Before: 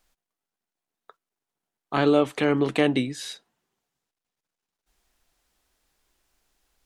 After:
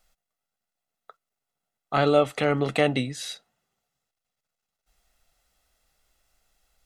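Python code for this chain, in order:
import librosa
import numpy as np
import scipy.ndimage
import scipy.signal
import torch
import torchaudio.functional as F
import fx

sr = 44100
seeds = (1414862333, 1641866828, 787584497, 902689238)

y = x + 0.53 * np.pad(x, (int(1.5 * sr / 1000.0), 0))[:len(x)]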